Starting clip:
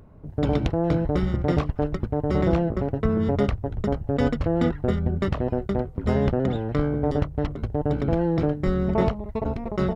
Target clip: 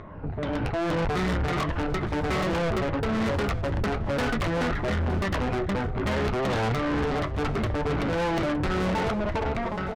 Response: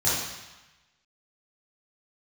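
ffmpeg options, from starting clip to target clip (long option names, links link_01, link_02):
-filter_complex "[0:a]afftfilt=real='re*pow(10,8/40*sin(2*PI*(1.2*log(max(b,1)*sr/1024/100)/log(2)-(-2.5)*(pts-256)/sr)))':imag='im*pow(10,8/40*sin(2*PI*(1.2*log(max(b,1)*sr/1024/100)/log(2)-(-2.5)*(pts-256)/sr)))':win_size=1024:overlap=0.75,lowpass=3600,equalizer=frequency=1700:width=0.43:gain=12,acompressor=threshold=-23dB:ratio=12,alimiter=limit=-22dB:level=0:latency=1:release=470,dynaudnorm=framelen=130:gausssize=11:maxgain=13.5dB,aeval=exprs='0.376*sin(PI/2*2*val(0)/0.376)':channel_layout=same,flanger=delay=9:depth=2.5:regen=-55:speed=1.2:shape=triangular,asoftclip=type=tanh:threshold=-24dB,asplit=2[link_01][link_02];[link_02]aecho=0:1:913:0.168[link_03];[link_01][link_03]amix=inputs=2:normalize=0"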